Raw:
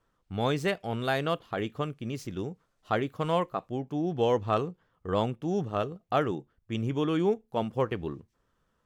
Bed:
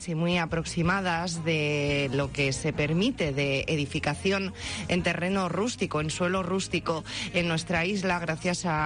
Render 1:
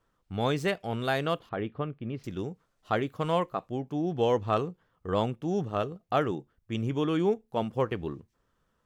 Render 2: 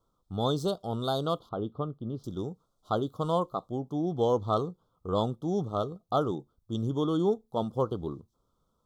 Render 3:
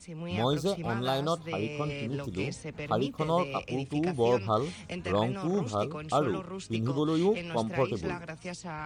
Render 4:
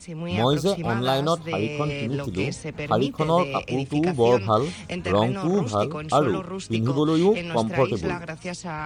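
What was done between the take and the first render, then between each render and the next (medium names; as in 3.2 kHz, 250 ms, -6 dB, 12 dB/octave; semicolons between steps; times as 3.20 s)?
1.49–2.24 s: distance through air 390 m
elliptic band-stop 1.3–3.4 kHz, stop band 40 dB; dynamic bell 4.2 kHz, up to +4 dB, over -53 dBFS, Q 2
add bed -11.5 dB
trim +7 dB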